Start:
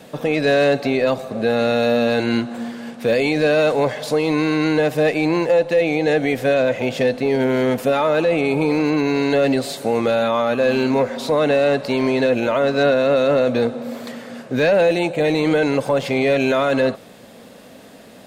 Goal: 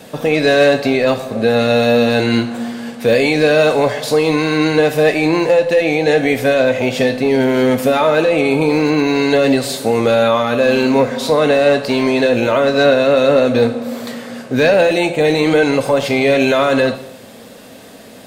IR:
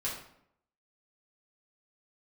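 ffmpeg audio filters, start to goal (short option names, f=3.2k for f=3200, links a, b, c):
-filter_complex "[0:a]asplit=2[a][b];[b]highshelf=f=3.1k:g=11.5[c];[1:a]atrim=start_sample=2205[d];[c][d]afir=irnorm=-1:irlink=0,volume=-11dB[e];[a][e]amix=inputs=2:normalize=0,volume=2.5dB"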